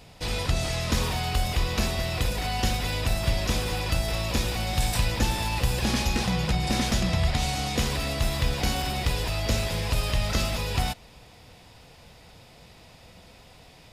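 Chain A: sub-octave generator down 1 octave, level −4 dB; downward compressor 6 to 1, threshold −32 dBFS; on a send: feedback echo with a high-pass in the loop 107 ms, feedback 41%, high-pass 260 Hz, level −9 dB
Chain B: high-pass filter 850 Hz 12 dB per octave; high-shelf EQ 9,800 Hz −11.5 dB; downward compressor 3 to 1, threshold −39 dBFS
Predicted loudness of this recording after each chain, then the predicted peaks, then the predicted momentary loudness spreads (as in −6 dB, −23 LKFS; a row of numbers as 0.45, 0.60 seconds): −35.5, −38.5 LKFS; −20.0, −22.0 dBFS; 15, 16 LU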